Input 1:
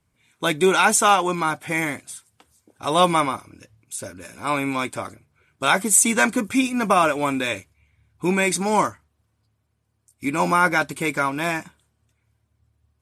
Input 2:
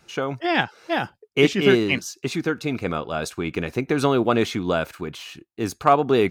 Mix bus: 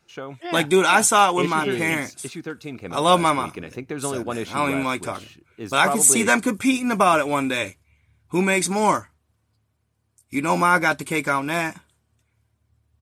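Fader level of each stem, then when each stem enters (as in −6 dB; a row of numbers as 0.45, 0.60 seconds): +0.5, −8.5 decibels; 0.10, 0.00 seconds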